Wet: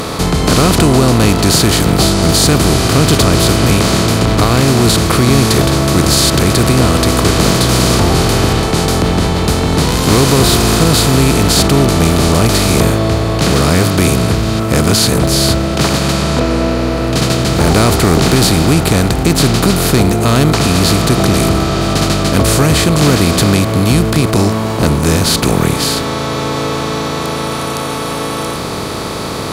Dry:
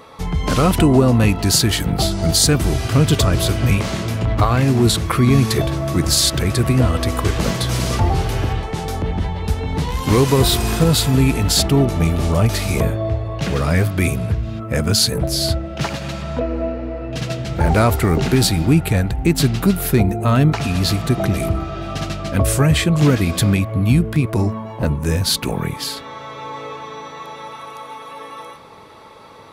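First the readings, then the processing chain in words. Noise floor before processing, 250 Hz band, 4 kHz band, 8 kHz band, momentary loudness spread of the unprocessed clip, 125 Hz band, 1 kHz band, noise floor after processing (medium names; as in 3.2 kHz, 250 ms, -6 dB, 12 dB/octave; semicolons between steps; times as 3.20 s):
-36 dBFS, +7.0 dB, +8.0 dB, +8.0 dB, 12 LU, +5.0 dB, +8.5 dB, -19 dBFS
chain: spectral levelling over time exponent 0.4; word length cut 10-bit, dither none; trim -1 dB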